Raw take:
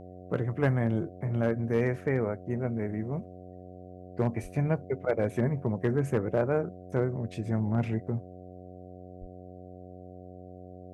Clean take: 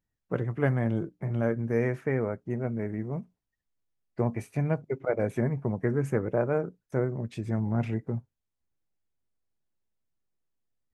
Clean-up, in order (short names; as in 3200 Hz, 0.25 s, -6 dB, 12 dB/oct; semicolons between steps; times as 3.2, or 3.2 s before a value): clip repair -17 dBFS; de-hum 91.2 Hz, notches 8; 4.42–4.54 HPF 140 Hz 24 dB/oct; 9.2–9.32 HPF 140 Hz 24 dB/oct